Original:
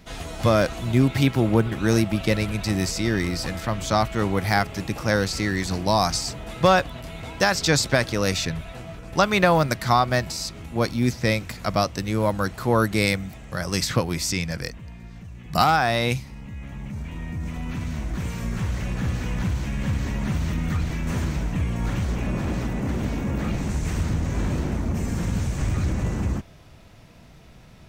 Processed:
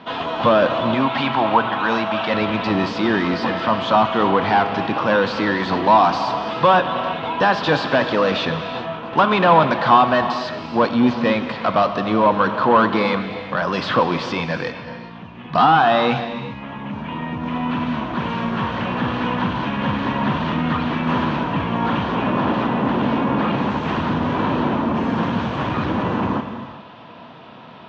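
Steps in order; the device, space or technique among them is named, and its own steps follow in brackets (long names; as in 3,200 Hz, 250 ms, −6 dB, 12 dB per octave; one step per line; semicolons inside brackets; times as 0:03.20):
0:00.94–0:02.34: low shelf with overshoot 550 Hz −8.5 dB, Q 1.5
overdrive pedal into a guitar cabinet (mid-hump overdrive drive 24 dB, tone 1,900 Hz, clips at −4.5 dBFS; loudspeaker in its box 110–3,800 Hz, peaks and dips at 240 Hz +6 dB, 1,000 Hz +8 dB, 2,100 Hz −8 dB, 3,200 Hz +4 dB)
reverb whose tail is shaped and stops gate 430 ms flat, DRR 8 dB
level −2.5 dB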